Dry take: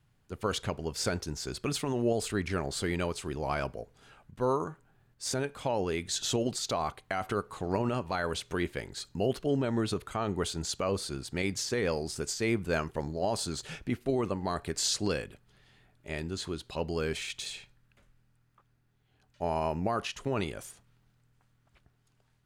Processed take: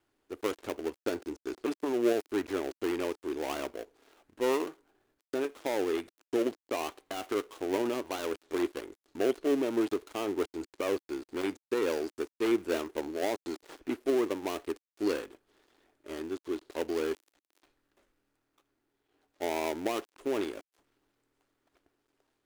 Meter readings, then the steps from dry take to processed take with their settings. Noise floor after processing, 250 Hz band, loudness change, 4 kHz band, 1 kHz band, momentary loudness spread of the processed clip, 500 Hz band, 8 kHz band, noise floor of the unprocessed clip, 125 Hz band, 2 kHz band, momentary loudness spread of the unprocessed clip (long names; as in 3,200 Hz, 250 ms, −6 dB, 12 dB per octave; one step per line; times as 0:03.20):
below −85 dBFS, +1.0 dB, −0.5 dB, −7.5 dB, −3.5 dB, 9 LU, +1.5 dB, −11.0 dB, −70 dBFS, −18.0 dB, −3.0 dB, 8 LU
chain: gap after every zero crossing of 0.27 ms
low shelf with overshoot 220 Hz −12.5 dB, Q 3
level −2 dB